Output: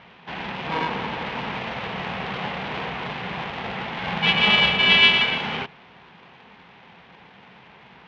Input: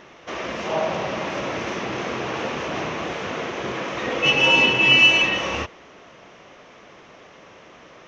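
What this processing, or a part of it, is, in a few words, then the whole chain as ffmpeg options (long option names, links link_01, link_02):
ring modulator pedal into a guitar cabinet: -af "aeval=exprs='val(0)*sgn(sin(2*PI*320*n/s))':channel_layout=same,highpass=97,equalizer=frequency=99:width_type=q:width=4:gain=-7,equalizer=frequency=180:width_type=q:width=4:gain=4,equalizer=frequency=310:width_type=q:width=4:gain=-8,equalizer=frequency=610:width_type=q:width=4:gain=-6,equalizer=frequency=1400:width_type=q:width=4:gain=-5,lowpass=frequency=3600:width=0.5412,lowpass=frequency=3600:width=1.3066"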